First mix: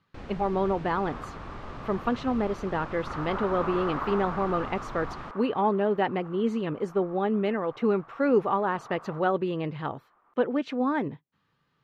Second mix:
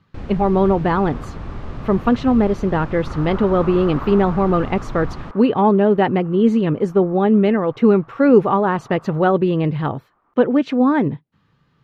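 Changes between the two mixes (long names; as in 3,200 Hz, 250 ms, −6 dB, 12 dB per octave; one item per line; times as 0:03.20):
speech +7.0 dB
first sound +3.5 dB
master: add low-shelf EQ 280 Hz +10 dB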